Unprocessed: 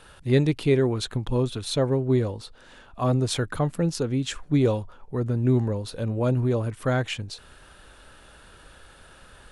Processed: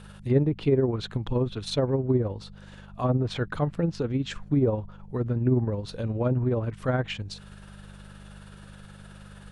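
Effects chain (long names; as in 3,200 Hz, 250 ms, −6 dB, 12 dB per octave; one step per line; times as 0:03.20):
amplitude tremolo 19 Hz, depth 42%
hum with harmonics 50 Hz, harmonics 4, −47 dBFS 0 dB per octave
treble cut that deepens with the level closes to 1,000 Hz, closed at −18.5 dBFS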